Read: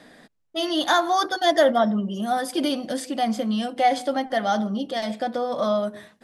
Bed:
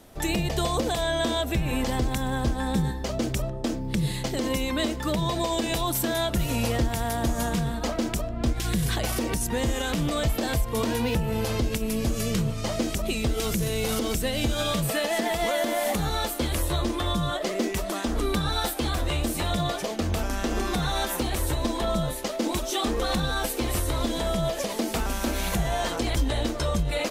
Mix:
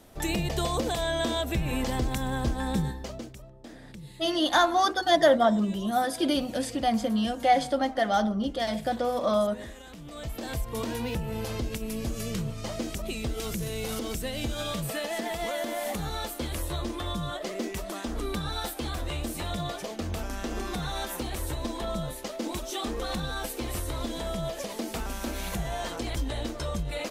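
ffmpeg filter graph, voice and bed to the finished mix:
-filter_complex "[0:a]adelay=3650,volume=0.794[s0];[1:a]volume=3.16,afade=t=out:st=2.77:d=0.56:silence=0.158489,afade=t=in:st=10.04:d=0.6:silence=0.237137[s1];[s0][s1]amix=inputs=2:normalize=0"

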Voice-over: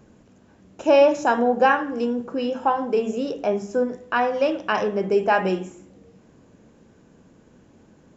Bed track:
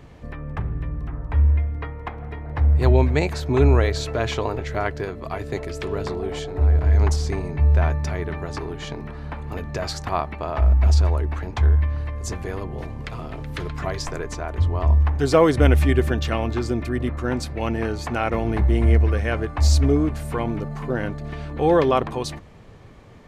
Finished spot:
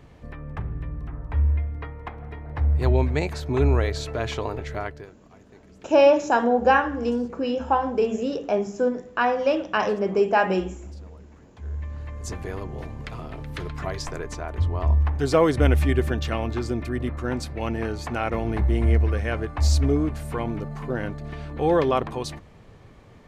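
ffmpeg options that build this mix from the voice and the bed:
-filter_complex "[0:a]adelay=5050,volume=0.944[s0];[1:a]volume=7.5,afade=t=out:st=4.71:d=0.44:silence=0.0944061,afade=t=in:st=11.58:d=0.8:silence=0.0841395[s1];[s0][s1]amix=inputs=2:normalize=0"

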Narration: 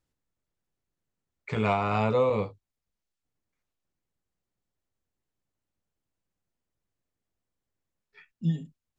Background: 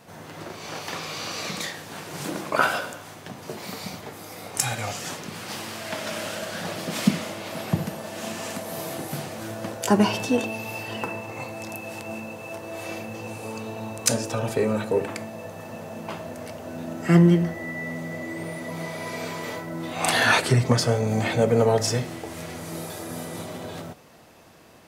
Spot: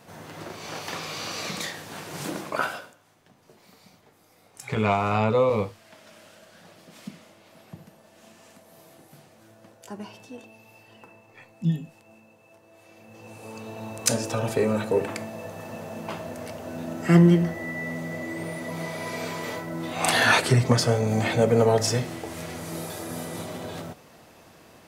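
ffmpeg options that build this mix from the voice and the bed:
-filter_complex "[0:a]adelay=3200,volume=1.41[s0];[1:a]volume=8.41,afade=t=out:st=2.29:d=0.66:silence=0.11885,afade=t=in:st=12.94:d=1.34:silence=0.105925[s1];[s0][s1]amix=inputs=2:normalize=0"

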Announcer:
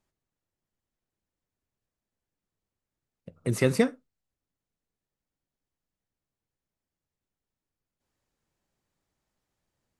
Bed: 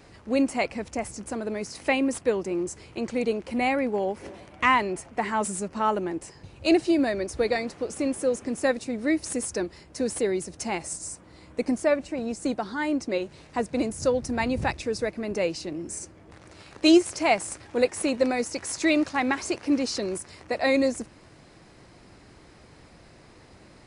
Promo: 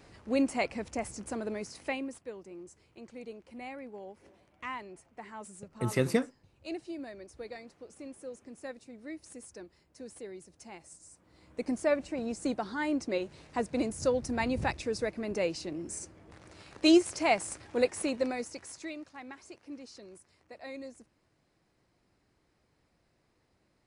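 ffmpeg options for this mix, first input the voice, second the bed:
-filter_complex "[0:a]adelay=2350,volume=0.596[s0];[1:a]volume=2.99,afade=t=out:st=1.43:d=0.77:silence=0.199526,afade=t=in:st=11.1:d=0.86:silence=0.199526,afade=t=out:st=17.84:d=1.11:silence=0.149624[s1];[s0][s1]amix=inputs=2:normalize=0"

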